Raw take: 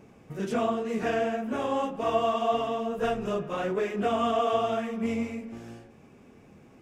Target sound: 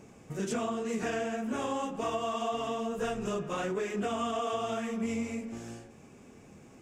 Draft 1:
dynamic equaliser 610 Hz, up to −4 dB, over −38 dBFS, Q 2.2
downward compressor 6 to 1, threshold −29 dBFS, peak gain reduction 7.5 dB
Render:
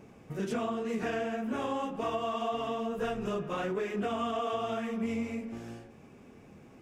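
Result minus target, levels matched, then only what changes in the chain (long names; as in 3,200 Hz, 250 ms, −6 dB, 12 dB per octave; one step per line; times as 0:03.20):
8,000 Hz band −8.5 dB
add after downward compressor: parametric band 7,300 Hz +10.5 dB 0.85 octaves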